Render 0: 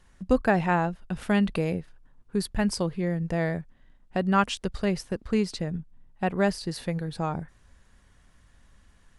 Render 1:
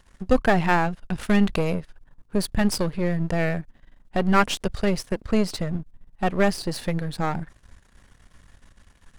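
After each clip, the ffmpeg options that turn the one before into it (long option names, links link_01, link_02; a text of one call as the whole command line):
ffmpeg -i in.wav -af "aeval=exprs='if(lt(val(0),0),0.251*val(0),val(0))':channel_layout=same,volume=8dB" out.wav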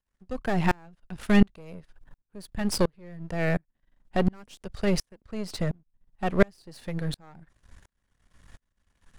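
ffmpeg -i in.wav -filter_complex "[0:a]acrossover=split=510|4300[link_01][link_02][link_03];[link_02]alimiter=limit=-15dB:level=0:latency=1:release=271[link_04];[link_01][link_04][link_03]amix=inputs=3:normalize=0,aeval=exprs='val(0)*pow(10,-35*if(lt(mod(-1.4*n/s,1),2*abs(-1.4)/1000),1-mod(-1.4*n/s,1)/(2*abs(-1.4)/1000),(mod(-1.4*n/s,1)-2*abs(-1.4)/1000)/(1-2*abs(-1.4)/1000))/20)':channel_layout=same,volume=3.5dB" out.wav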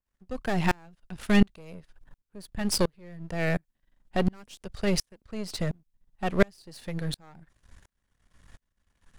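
ffmpeg -i in.wav -af "adynamicequalizer=threshold=0.00562:dfrequency=2300:dqfactor=0.7:tfrequency=2300:tqfactor=0.7:attack=5:release=100:ratio=0.375:range=2.5:mode=boostabove:tftype=highshelf,volume=-1.5dB" out.wav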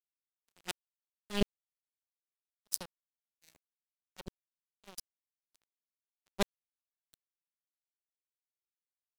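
ffmpeg -i in.wav -af "aeval=exprs='0.422*(cos(1*acos(clip(val(0)/0.422,-1,1)))-cos(1*PI/2))+0.133*(cos(3*acos(clip(val(0)/0.422,-1,1)))-cos(3*PI/2))':channel_layout=same,aexciter=amount=4.3:drive=4.3:freq=2900,aeval=exprs='sgn(val(0))*max(abs(val(0))-0.0188,0)':channel_layout=same,volume=-7dB" out.wav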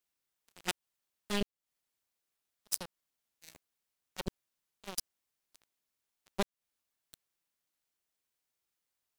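ffmpeg -i in.wav -af "acompressor=threshold=-38dB:ratio=8,volume=9.5dB" out.wav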